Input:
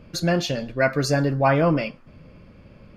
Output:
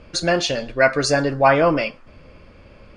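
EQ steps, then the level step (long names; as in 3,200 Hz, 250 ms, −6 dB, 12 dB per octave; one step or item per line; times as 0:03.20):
Butterworth low-pass 10,000 Hz 96 dB per octave
parametric band 160 Hz −11 dB 1.6 octaves
+6.0 dB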